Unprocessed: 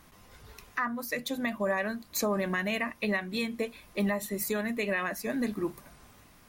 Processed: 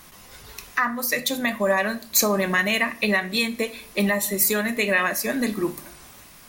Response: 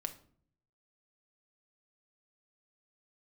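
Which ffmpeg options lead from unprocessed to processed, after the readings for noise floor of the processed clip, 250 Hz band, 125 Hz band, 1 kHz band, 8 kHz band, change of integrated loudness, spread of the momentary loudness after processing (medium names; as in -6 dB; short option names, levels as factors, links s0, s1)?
-48 dBFS, +6.0 dB, +6.0 dB, +8.5 dB, +14.0 dB, +9.0 dB, 9 LU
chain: -filter_complex "[0:a]asplit=2[s0][s1];[1:a]atrim=start_sample=2205,lowshelf=f=260:g=-8,highshelf=f=2600:g=9.5[s2];[s1][s2]afir=irnorm=-1:irlink=0,volume=1.78[s3];[s0][s3]amix=inputs=2:normalize=0"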